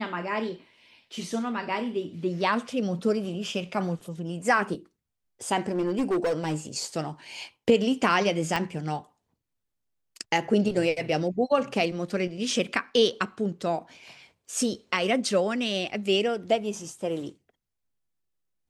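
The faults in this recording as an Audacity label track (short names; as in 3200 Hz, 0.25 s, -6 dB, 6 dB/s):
5.700000	6.550000	clipped -21.5 dBFS
8.560000	8.560000	pop -13 dBFS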